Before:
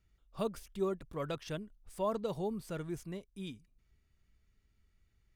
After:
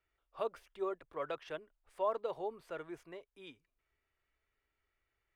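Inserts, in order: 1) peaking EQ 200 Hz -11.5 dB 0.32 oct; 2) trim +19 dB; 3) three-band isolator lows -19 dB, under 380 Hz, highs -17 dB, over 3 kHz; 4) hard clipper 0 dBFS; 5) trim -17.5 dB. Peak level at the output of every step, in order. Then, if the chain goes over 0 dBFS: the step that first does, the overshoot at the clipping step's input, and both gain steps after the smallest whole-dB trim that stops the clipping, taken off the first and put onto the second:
-23.0 dBFS, -4.0 dBFS, -5.0 dBFS, -5.0 dBFS, -22.5 dBFS; nothing clips

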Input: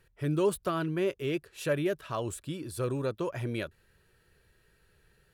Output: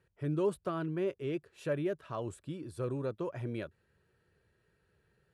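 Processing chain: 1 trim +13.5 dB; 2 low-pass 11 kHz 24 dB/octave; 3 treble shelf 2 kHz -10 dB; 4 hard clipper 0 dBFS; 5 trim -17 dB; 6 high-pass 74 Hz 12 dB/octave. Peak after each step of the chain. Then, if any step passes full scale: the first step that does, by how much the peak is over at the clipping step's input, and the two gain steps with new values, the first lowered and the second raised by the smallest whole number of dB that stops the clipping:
-4.0 dBFS, -4.0 dBFS, -5.0 dBFS, -5.0 dBFS, -22.0 dBFS, -22.0 dBFS; nothing clips

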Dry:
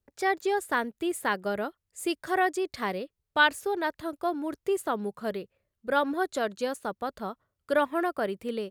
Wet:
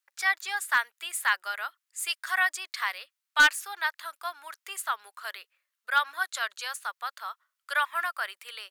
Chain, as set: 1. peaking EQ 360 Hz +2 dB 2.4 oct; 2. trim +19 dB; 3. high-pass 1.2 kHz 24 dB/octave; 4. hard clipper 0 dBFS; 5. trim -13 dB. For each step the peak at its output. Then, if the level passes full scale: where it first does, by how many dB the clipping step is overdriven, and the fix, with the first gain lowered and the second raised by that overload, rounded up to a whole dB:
-9.0 dBFS, +10.0 dBFS, +9.0 dBFS, 0.0 dBFS, -13.0 dBFS; step 2, 9.0 dB; step 2 +10 dB, step 5 -4 dB

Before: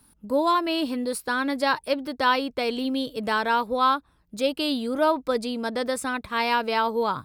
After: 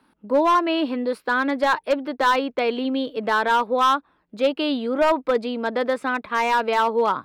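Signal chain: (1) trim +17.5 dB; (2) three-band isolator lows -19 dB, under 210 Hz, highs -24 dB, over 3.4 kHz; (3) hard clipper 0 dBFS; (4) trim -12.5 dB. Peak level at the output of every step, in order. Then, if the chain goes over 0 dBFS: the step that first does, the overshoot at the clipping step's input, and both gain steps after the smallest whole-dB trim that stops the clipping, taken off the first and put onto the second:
+8.5 dBFS, +8.0 dBFS, 0.0 dBFS, -12.5 dBFS; step 1, 8.0 dB; step 1 +9.5 dB, step 4 -4.5 dB

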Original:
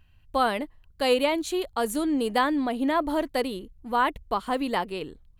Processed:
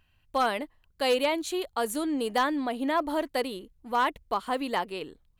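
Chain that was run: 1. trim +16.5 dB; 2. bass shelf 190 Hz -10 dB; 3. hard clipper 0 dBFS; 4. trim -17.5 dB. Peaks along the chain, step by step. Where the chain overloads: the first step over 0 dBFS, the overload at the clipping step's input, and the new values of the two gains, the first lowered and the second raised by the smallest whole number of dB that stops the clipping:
+6.0 dBFS, +6.0 dBFS, 0.0 dBFS, -17.5 dBFS; step 1, 6.0 dB; step 1 +10.5 dB, step 4 -11.5 dB

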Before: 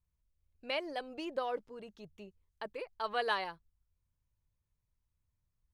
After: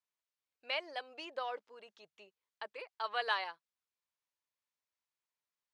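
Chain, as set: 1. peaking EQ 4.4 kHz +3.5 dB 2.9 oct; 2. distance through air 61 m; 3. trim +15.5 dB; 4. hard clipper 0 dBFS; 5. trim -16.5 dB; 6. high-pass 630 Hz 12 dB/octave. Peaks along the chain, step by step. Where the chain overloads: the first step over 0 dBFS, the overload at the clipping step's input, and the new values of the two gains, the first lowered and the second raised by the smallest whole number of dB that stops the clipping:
-16.5 dBFS, -17.5 dBFS, -2.0 dBFS, -2.0 dBFS, -18.5 dBFS, -19.0 dBFS; nothing clips

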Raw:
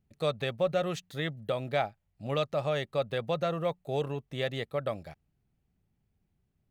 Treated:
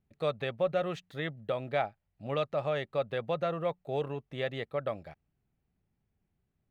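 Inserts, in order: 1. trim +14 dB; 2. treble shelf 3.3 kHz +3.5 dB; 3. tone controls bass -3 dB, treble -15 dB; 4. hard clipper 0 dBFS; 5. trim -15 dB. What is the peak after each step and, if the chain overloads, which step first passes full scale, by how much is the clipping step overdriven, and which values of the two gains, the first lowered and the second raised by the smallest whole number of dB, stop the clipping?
-1.5 dBFS, -1.0 dBFS, -2.0 dBFS, -2.0 dBFS, -17.0 dBFS; nothing clips

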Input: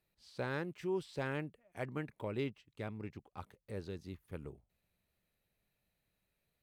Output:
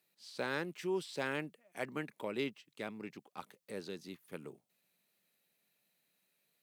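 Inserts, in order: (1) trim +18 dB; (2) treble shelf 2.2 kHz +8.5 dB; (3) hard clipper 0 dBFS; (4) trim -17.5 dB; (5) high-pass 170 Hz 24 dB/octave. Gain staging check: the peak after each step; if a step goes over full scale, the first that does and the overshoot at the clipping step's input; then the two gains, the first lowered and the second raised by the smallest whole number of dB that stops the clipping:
-7.5 dBFS, -4.0 dBFS, -4.0 dBFS, -21.5 dBFS, -20.5 dBFS; nothing clips

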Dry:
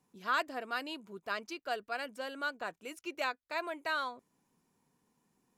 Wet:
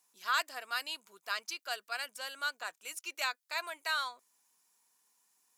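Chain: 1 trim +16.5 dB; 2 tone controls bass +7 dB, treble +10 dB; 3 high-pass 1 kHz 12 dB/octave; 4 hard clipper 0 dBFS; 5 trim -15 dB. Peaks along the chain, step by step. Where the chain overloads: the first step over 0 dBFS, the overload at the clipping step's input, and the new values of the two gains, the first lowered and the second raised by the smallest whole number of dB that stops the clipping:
-4.0 dBFS, -2.0 dBFS, -2.0 dBFS, -2.0 dBFS, -17.0 dBFS; nothing clips

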